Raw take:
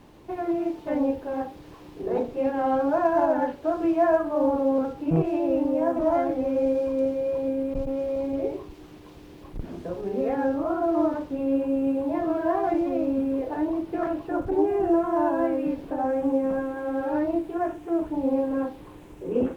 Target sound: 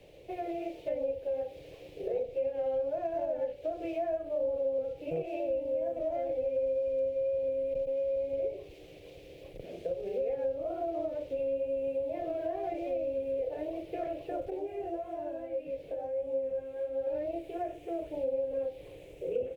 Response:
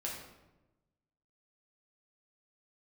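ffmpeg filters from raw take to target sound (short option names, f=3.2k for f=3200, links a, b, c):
-filter_complex "[0:a]firequalizer=gain_entry='entry(140,0);entry(240,-11);entry(520,14);entry(970,-15);entry(1500,-9);entry(2300,8);entry(5100,1)':delay=0.05:min_phase=1,acrossover=split=150|420[a][b][c];[a]acompressor=threshold=-46dB:ratio=4[d];[b]acompressor=threshold=-38dB:ratio=4[e];[c]acompressor=threshold=-28dB:ratio=4[f];[d][e][f]amix=inputs=3:normalize=0,asettb=1/sr,asplit=3[g][h][i];[g]atrim=end=14.504[j];[h]atrim=start=14.5:end=17.07,asetpts=PTS-STARTPTS,afade=t=in:d=0.004:c=qsin,afade=t=out:st=2.566:d=0.004:c=qsin,flanger=delay=18.5:depth=3.3:speed=1.6[k];[i]atrim=start=17.066[l];[j][k]acrossfade=d=0.004:c1=hsin:c2=qsin[m];[m][l]acrossfade=d=0.004:c1=qsin:c2=hsin,volume=-6dB"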